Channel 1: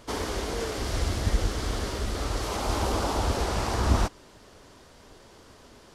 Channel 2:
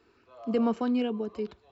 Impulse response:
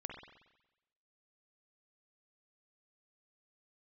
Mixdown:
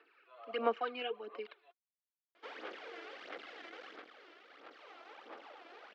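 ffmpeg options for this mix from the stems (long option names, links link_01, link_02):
-filter_complex "[0:a]aeval=exprs='(tanh(14.1*val(0)+0.45)-tanh(0.45))/14.1':channel_layout=same,adelay=2350,volume=-10.5dB,afade=type=out:start_time=3.86:duration=0.2:silence=0.398107[link_01];[1:a]highpass=frequency=480:poles=1,volume=0dB[link_02];[link_01][link_02]amix=inputs=2:normalize=0,aemphasis=mode=production:type=bsi,aphaser=in_gain=1:out_gain=1:delay=3:decay=0.62:speed=1.5:type=sinusoidal,highpass=frequency=340:width=0.5412,highpass=frequency=340:width=1.3066,equalizer=frequency=390:width_type=q:width=4:gain=-7,equalizer=frequency=640:width_type=q:width=4:gain=-5,equalizer=frequency=980:width_type=q:width=4:gain=-9,lowpass=frequency=2800:width=0.5412,lowpass=frequency=2800:width=1.3066"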